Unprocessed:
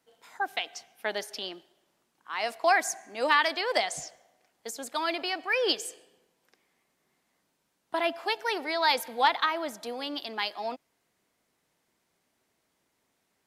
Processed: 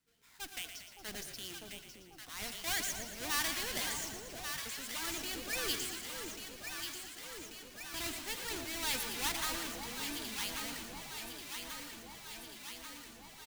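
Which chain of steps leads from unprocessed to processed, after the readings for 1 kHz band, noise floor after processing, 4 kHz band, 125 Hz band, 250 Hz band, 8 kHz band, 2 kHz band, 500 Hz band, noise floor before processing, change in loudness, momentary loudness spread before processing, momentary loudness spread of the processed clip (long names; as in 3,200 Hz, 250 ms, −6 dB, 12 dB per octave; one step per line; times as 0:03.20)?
−16.0 dB, −56 dBFS, −5.5 dB, can't be measured, −6.0 dB, +2.0 dB, −9.5 dB, −15.5 dB, −76 dBFS, −9.5 dB, 14 LU, 12 LU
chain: each half-wave held at its own peak
guitar amp tone stack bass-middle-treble 6-0-2
delay that swaps between a low-pass and a high-pass 569 ms, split 910 Hz, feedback 82%, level −5 dB
transient designer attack −3 dB, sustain +5 dB
echo with shifted repeats 116 ms, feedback 64%, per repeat −40 Hz, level −9 dB
level +5.5 dB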